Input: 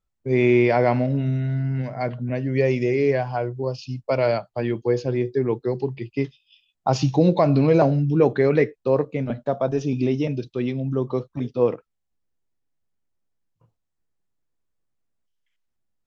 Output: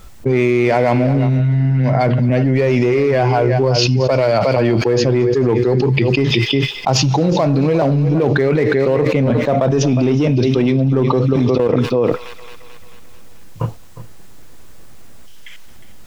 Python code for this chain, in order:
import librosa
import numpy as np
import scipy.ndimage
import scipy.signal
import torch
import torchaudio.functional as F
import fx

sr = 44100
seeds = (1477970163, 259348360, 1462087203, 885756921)

p1 = x + 10.0 ** (-15.0 / 20.0) * np.pad(x, (int(359 * sr / 1000.0), 0))[:len(x)]
p2 = 10.0 ** (-22.5 / 20.0) * (np.abs((p1 / 10.0 ** (-22.5 / 20.0) + 3.0) % 4.0 - 2.0) - 1.0)
p3 = p1 + F.gain(torch.from_numpy(p2), -12.0).numpy()
p4 = fx.doubler(p3, sr, ms=16.0, db=-4.0, at=(1.38, 1.93))
p5 = fx.level_steps(p4, sr, step_db=20, at=(11.33, 11.73))
p6 = fx.echo_wet_highpass(p5, sr, ms=220, feedback_pct=59, hz=2500.0, wet_db=-18.0)
p7 = fx.env_flatten(p6, sr, amount_pct=100)
y = F.gain(torch.from_numpy(p7), -1.0).numpy()